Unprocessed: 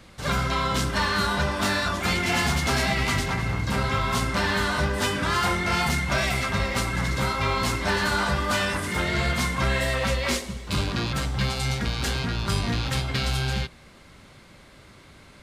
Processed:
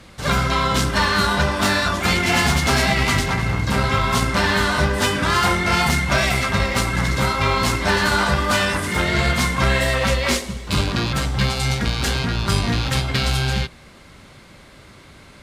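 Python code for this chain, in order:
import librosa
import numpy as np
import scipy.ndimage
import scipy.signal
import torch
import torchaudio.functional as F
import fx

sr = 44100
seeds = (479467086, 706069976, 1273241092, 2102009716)

y = fx.cheby_harmonics(x, sr, harmonics=(3, 8), levels_db=(-20, -43), full_scale_db=-11.5)
y = F.gain(torch.from_numpy(y), 8.0).numpy()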